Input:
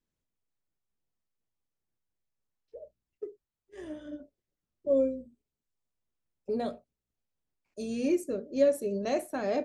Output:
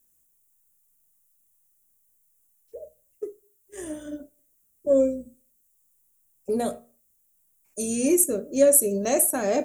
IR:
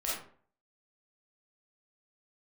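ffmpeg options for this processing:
-filter_complex "[0:a]aexciter=amount=15.7:drive=2.4:freq=6700,asplit=2[link_01][link_02];[1:a]atrim=start_sample=2205,afade=type=out:start_time=0.36:duration=0.01,atrim=end_sample=16317[link_03];[link_02][link_03]afir=irnorm=-1:irlink=0,volume=-26.5dB[link_04];[link_01][link_04]amix=inputs=2:normalize=0,acontrast=40"

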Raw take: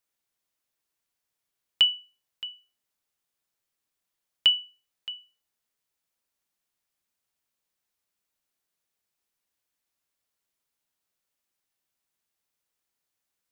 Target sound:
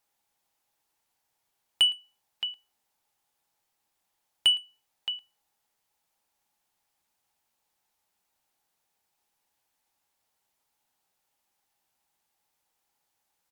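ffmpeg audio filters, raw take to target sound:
ffmpeg -i in.wav -filter_complex "[0:a]equalizer=frequency=830:width=4.1:gain=12.5,asplit=2[link_01][link_02];[link_02]acompressor=threshold=-31dB:ratio=6,volume=-3dB[link_03];[link_01][link_03]amix=inputs=2:normalize=0,asoftclip=type=tanh:threshold=-14.5dB,aecho=1:1:112:0.0668" -ar 48000 -c:a aac -b:a 192k out.aac

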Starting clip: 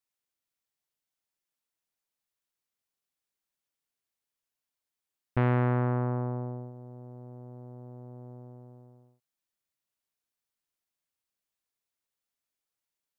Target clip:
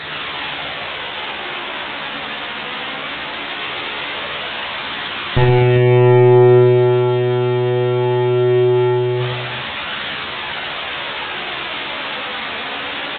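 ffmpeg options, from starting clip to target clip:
ffmpeg -i in.wav -filter_complex "[0:a]aeval=exprs='val(0)+0.5*0.0178*sgn(val(0))':channel_layout=same,highpass=frequency=200:poles=1,bandreject=frequency=60:width_type=h:width=6,bandreject=frequency=120:width_type=h:width=6,bandreject=frequency=180:width_type=h:width=6,bandreject=frequency=240:width_type=h:width=6,bandreject=frequency=300:width_type=h:width=6,bandreject=frequency=360:width_type=h:width=6,bandreject=frequency=420:width_type=h:width=6,bandreject=frequency=480:width_type=h:width=6,aeval=exprs='0.224*(cos(1*acos(clip(val(0)/0.224,-1,1)))-cos(1*PI/2))+0.00891*(cos(2*acos(clip(val(0)/0.224,-1,1)))-cos(2*PI/2))+0.00316*(cos(3*acos(clip(val(0)/0.224,-1,1)))-cos(3*PI/2))+0.00447*(cos(4*acos(clip(val(0)/0.224,-1,1)))-cos(4*PI/2))+0.0891*(cos(5*acos(clip(val(0)/0.224,-1,1)))-cos(5*PI/2))':channel_layout=same,aeval=exprs='val(0)+0.00126*sin(2*PI*860*n/s)':channel_layout=same,flanger=delay=0.5:depth=3.8:regen=51:speed=0.2:shape=triangular,asplit=2[link_01][link_02];[link_02]adelay=14,volume=-3dB[link_03];[link_01][link_03]amix=inputs=2:normalize=0,aecho=1:1:54|119|248|394:0.531|0.668|0.398|0.473,aresample=8000,aresample=44100,alimiter=level_in=18dB:limit=-1dB:release=50:level=0:latency=1,volume=-2dB" -ar 48000 -c:a libopus -b:a 48k out.opus

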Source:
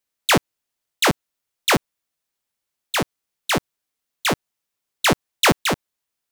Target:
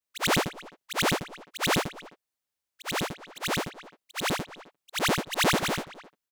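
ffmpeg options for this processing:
ffmpeg -i in.wav -filter_complex "[0:a]afftfilt=real='re':imag='-im':win_size=8192:overlap=0.75,asplit=2[link_01][link_02];[link_02]adelay=260,highpass=300,lowpass=3400,asoftclip=type=hard:threshold=-24dB,volume=-15dB[link_03];[link_01][link_03]amix=inputs=2:normalize=0,volume=-2dB" out.wav

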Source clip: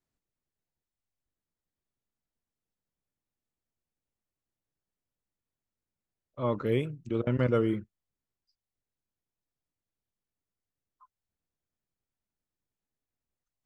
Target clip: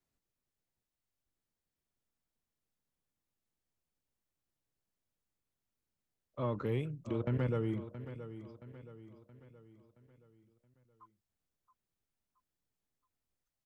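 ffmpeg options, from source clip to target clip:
ffmpeg -i in.wav -filter_complex "[0:a]acrossover=split=130[link_01][link_02];[link_02]acompressor=threshold=-34dB:ratio=3[link_03];[link_01][link_03]amix=inputs=2:normalize=0,asoftclip=type=tanh:threshold=-23dB,aecho=1:1:673|1346|2019|2692|3365:0.237|0.111|0.0524|0.0246|0.0116" out.wav

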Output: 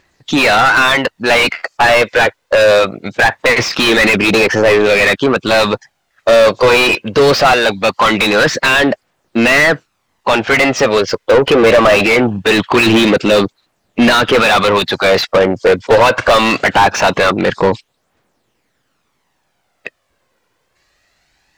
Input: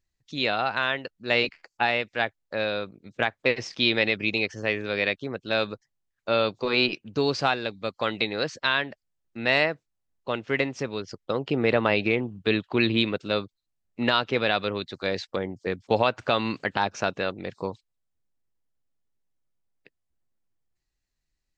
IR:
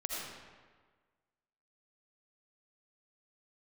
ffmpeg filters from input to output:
-filter_complex "[0:a]aphaser=in_gain=1:out_gain=1:delay=2.1:decay=0.42:speed=0.22:type=triangular,asplit=2[link_01][link_02];[link_02]highpass=frequency=720:poles=1,volume=35dB,asoftclip=type=tanh:threshold=-5dB[link_03];[link_01][link_03]amix=inputs=2:normalize=0,lowpass=frequency=1800:poles=1,volume=-6dB,volume=5dB"

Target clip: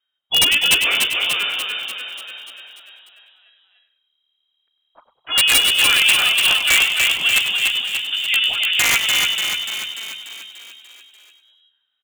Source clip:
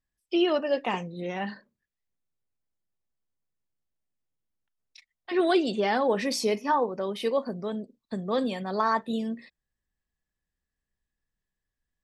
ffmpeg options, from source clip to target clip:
ffmpeg -i in.wav -filter_complex "[0:a]lowpass=frequency=2700:width_type=q:width=0.5098,lowpass=frequency=2700:width_type=q:width=0.6013,lowpass=frequency=2700:width_type=q:width=0.9,lowpass=frequency=2700:width_type=q:width=2.563,afreqshift=-3200,asplit=2[link_01][link_02];[link_02]asetrate=52444,aresample=44100,atempo=0.840896,volume=-6dB[link_03];[link_01][link_03]amix=inputs=2:normalize=0,aeval=exprs='(mod(5.31*val(0)+1,2)-1)/5.31':channel_layout=same,asplit=2[link_04][link_05];[link_05]asplit=4[link_06][link_07][link_08][link_09];[link_06]adelay=99,afreqshift=-79,volume=-11dB[link_10];[link_07]adelay=198,afreqshift=-158,volume=-20.1dB[link_11];[link_08]adelay=297,afreqshift=-237,volume=-29.2dB[link_12];[link_09]adelay=396,afreqshift=-316,volume=-38.4dB[link_13];[link_10][link_11][link_12][link_13]amix=inputs=4:normalize=0[link_14];[link_04][link_14]amix=inputs=2:normalize=0,acontrast=29,asplit=2[link_15][link_16];[link_16]asplit=8[link_17][link_18][link_19][link_20][link_21][link_22][link_23][link_24];[link_17]adelay=293,afreqshift=36,volume=-4dB[link_25];[link_18]adelay=586,afreqshift=72,volume=-8.6dB[link_26];[link_19]adelay=879,afreqshift=108,volume=-13.2dB[link_27];[link_20]adelay=1172,afreqshift=144,volume=-17.7dB[link_28];[link_21]adelay=1465,afreqshift=180,volume=-22.3dB[link_29];[link_22]adelay=1758,afreqshift=216,volume=-26.9dB[link_30];[link_23]adelay=2051,afreqshift=252,volume=-31.5dB[link_31];[link_24]adelay=2344,afreqshift=288,volume=-36.1dB[link_32];[link_25][link_26][link_27][link_28][link_29][link_30][link_31][link_32]amix=inputs=8:normalize=0[link_33];[link_15][link_33]amix=inputs=2:normalize=0,volume=2dB" out.wav

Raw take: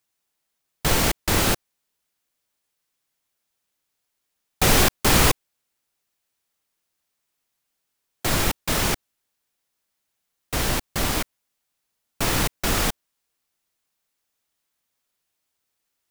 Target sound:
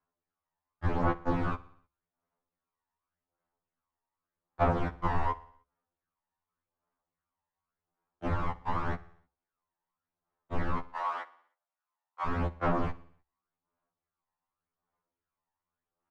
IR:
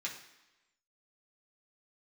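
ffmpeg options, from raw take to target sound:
-filter_complex "[0:a]asettb=1/sr,asplit=3[link_01][link_02][link_03];[link_01]atrim=end=1.054[link_04];[link_02]atrim=start=1.05:end=1.47,asetpts=PTS-STARTPTS,afade=type=in:duration=0.004:curve=qsin,afade=type=out:start_time=0.416:duration=0.004:curve=qsin,aecho=1:1:5.2:0.65,atrim=end_sample=18522[link_05];[link_03]atrim=start=1.466[link_06];[link_04][link_05]acrossfade=duration=0.004:curve1=hsin:curve2=qsin[link_07];[link_07][link_06]acrossfade=duration=0.004:curve1=qsin:curve2=hsin,asplit=3[link_08][link_09][link_10];[link_08]afade=type=out:start_time=10.83:duration=0.02[link_11];[link_09]highpass=frequency=690:width=0.5412,highpass=frequency=690:width=1.3066,afade=type=in:start_time=10.83:duration=0.02,afade=type=out:start_time=12.25:duration=0.02[link_12];[link_10]afade=type=in:start_time=12.25:duration=0.02[link_13];[link_11][link_12][link_13]amix=inputs=3:normalize=0,acompressor=threshold=-20dB:ratio=6,afreqshift=-65,aphaser=in_gain=1:out_gain=1:delay=1.1:decay=0.55:speed=0.87:type=sinusoidal,lowpass=frequency=1100:width_type=q:width=1.7,aecho=1:1:61|122|183|244|305:0.1|0.057|0.0325|0.0185|0.0106,afftfilt=real='re*2*eq(mod(b,4),0)':imag='im*2*eq(mod(b,4),0)':win_size=2048:overlap=0.75,volume=-4.5dB"

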